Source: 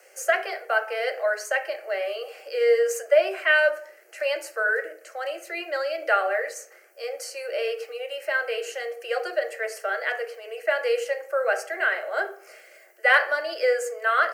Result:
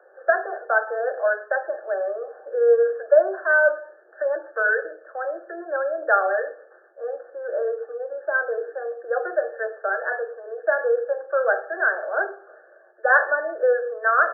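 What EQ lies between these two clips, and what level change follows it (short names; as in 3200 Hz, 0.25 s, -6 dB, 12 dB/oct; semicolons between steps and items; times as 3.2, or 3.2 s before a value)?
brick-wall FIR low-pass 1800 Hz; +3.0 dB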